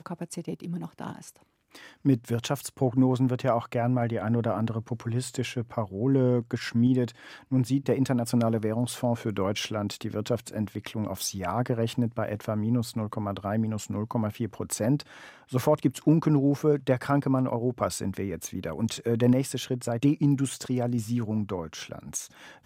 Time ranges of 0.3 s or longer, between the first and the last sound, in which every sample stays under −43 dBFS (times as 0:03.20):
0:01.36–0:01.75